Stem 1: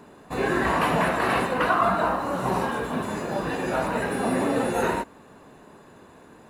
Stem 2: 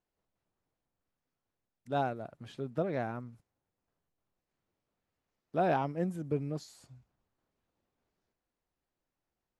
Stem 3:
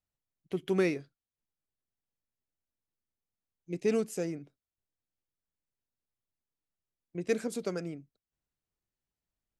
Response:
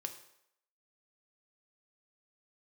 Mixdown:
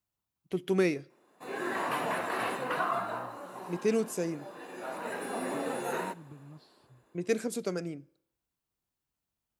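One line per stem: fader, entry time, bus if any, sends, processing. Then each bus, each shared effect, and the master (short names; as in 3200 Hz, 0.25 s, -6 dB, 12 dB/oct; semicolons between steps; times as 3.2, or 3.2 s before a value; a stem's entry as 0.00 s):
-11.0 dB, 1.10 s, send -9 dB, HPF 270 Hz 12 dB/oct; auto duck -16 dB, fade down 0.80 s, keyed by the third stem
-4.0 dB, 0.00 s, no send, LPF 5800 Hz; compressor, threshold -38 dBFS, peak gain reduction 12.5 dB; fixed phaser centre 1900 Hz, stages 6
-0.5 dB, 0.00 s, send -13 dB, dry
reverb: on, RT60 0.75 s, pre-delay 3 ms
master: HPF 43 Hz; high shelf 9600 Hz +6.5 dB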